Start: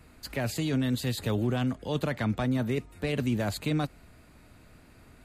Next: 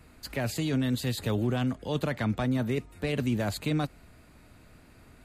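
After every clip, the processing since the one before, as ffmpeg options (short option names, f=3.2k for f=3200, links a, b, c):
-af anull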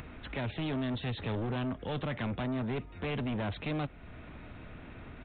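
-af "aresample=8000,asoftclip=type=tanh:threshold=-33dB,aresample=44100,acompressor=mode=upward:threshold=-41dB:ratio=2.5,volume=2dB"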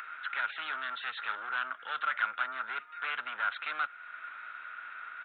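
-af "highpass=f=1.4k:t=q:w=10"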